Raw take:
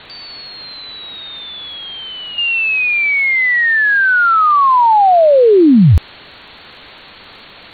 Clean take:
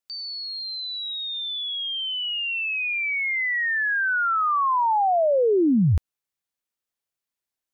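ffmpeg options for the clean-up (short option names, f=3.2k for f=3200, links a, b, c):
-af "adeclick=t=4,afwtdn=0.025,asetnsamples=n=441:p=0,asendcmd='2.38 volume volume -11.5dB',volume=0dB"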